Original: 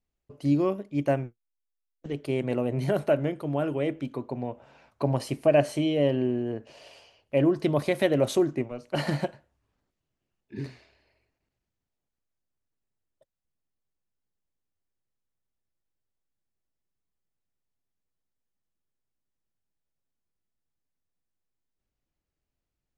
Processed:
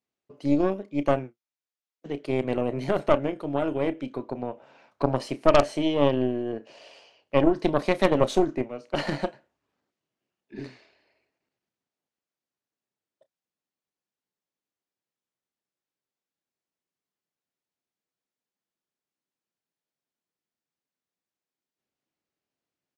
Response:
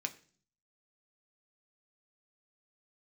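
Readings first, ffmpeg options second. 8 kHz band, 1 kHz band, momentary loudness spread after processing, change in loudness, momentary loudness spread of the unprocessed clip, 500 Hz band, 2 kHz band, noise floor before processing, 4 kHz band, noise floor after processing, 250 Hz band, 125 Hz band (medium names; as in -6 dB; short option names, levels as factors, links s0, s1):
-1.0 dB, +6.0 dB, 15 LU, +1.5 dB, 14 LU, +1.5 dB, +2.0 dB, -85 dBFS, +2.5 dB, under -85 dBFS, +1.0 dB, -3.0 dB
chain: -filter_complex "[0:a]highpass=210,lowpass=6900,asplit=2[s0][s1];[s1]adelay=31,volume=0.2[s2];[s0][s2]amix=inputs=2:normalize=0,aeval=exprs='0.335*(cos(1*acos(clip(val(0)/0.335,-1,1)))-cos(1*PI/2))+0.15*(cos(4*acos(clip(val(0)/0.335,-1,1)))-cos(4*PI/2))+0.0668*(cos(6*acos(clip(val(0)/0.335,-1,1)))-cos(6*PI/2))+0.0168*(cos(8*acos(clip(val(0)/0.335,-1,1)))-cos(8*PI/2))':c=same,volume=1.12"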